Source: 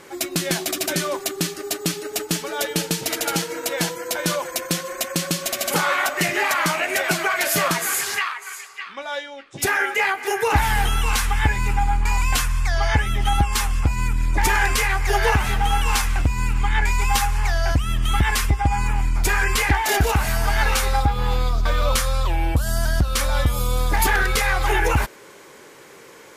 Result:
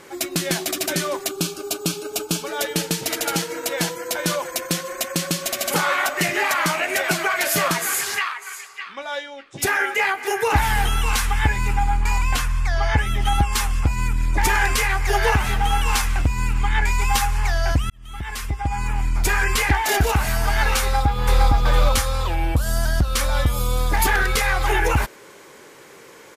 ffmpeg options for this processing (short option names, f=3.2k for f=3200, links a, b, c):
-filter_complex "[0:a]asettb=1/sr,asplit=3[a][b][c];[a]atrim=end=1.294[d];[b]atrim=start=1.29:end=2.46,asetpts=PTS-STARTPTS,afade=t=in:d=0.004:c=qsin,afade=t=out:st=1.166:d=0.004:c=qsin,asuperstop=centerf=1900:order=4:qfactor=3[e];[c]atrim=start=2.456[f];[d][e]acrossfade=d=0.004:c1=hsin:c2=qsin[g];[g][f]acrossfade=d=0.004:c1=qsin:c2=hsin,asettb=1/sr,asplit=3[h][i][j];[h]atrim=end=12.184[k];[i]atrim=start=12.18:end=12.98,asetpts=PTS-STARTPTS,afade=t=in:d=0.004:c=qsin,afade=t=out:st=0.796:d=0.004:c=qsin,highshelf=f=4k:g=-6[l];[j]atrim=start=12.976[m];[k][l]acrossfade=d=0.004:c1=hsin:c2=qsin[n];[n][m]acrossfade=d=0.004:c1=qsin:c2=hsin,asplit=2[o][p];[p]afade=t=in:st=20.81:d=0.01,afade=t=out:st=21.42:d=0.01,aecho=0:1:460|920|1380|1840|2300:0.944061|0.330421|0.115647|0.0404766|0.0141668[q];[o][q]amix=inputs=2:normalize=0,asplit=2[r][s];[r]atrim=end=17.9,asetpts=PTS-STARTPTS,afade=t=out:st=17.896:d=0.004:c=hsin[t];[s]atrim=start=17.9,asetpts=PTS-STARTPTS,afade=t=in:d=1.28[u];[t][u]concat=n=2:v=0:a=1"